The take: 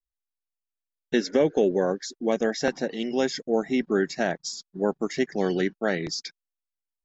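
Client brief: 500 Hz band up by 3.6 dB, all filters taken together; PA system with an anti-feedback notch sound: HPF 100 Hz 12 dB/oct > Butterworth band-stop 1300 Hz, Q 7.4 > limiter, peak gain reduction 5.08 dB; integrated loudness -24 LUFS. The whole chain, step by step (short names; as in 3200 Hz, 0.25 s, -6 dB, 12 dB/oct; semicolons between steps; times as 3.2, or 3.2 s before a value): HPF 100 Hz 12 dB/oct; Butterworth band-stop 1300 Hz, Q 7.4; bell 500 Hz +4.5 dB; gain +1.5 dB; limiter -11 dBFS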